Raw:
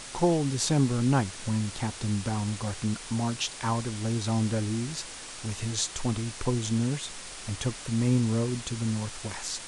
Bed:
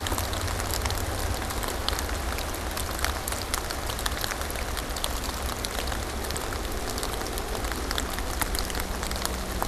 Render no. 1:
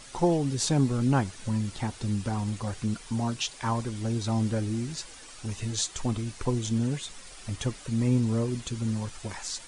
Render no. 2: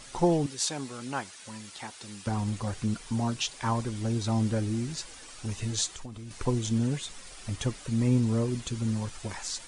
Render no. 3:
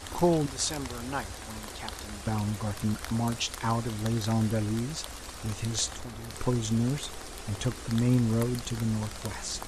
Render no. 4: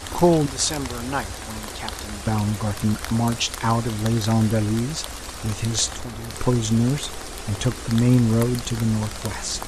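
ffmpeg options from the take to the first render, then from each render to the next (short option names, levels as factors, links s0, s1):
-af "afftdn=nr=9:nf=-42"
-filter_complex "[0:a]asettb=1/sr,asplit=3[s0][s1][s2];[s0]atrim=end=0.464[s3];[s1]atrim=start=0.46:end=2.27,asetpts=PTS-STARTPTS,afade=t=in:d=0.004:c=qsin,afade=t=out:st=1.806:d=0.004:c=qsin,highpass=f=1100:p=1[s4];[s2]atrim=start=2.266[s5];[s3][s4]acrossfade=d=0.004:c1=hsin:c2=qsin[s6];[s6][s5]acrossfade=d=0.004:c1=qsin:c2=hsin,asettb=1/sr,asplit=3[s7][s8][s9];[s7]atrim=end=5.904[s10];[s8]atrim=start=5.9:end=6.31,asetpts=PTS-STARTPTS,afade=t=in:d=0.004:c=qsin,afade=t=out:st=0.406:d=0.004:c=qsin,acompressor=threshold=0.0126:ratio=6:attack=3.2:release=140:knee=1:detection=peak[s11];[s9]atrim=start=6.306[s12];[s10][s11]acrossfade=d=0.004:c1=hsin:c2=qsin[s13];[s13][s12]acrossfade=d=0.004:c1=qsin:c2=hsin"
-filter_complex "[1:a]volume=0.237[s0];[0:a][s0]amix=inputs=2:normalize=0"
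-af "volume=2.37"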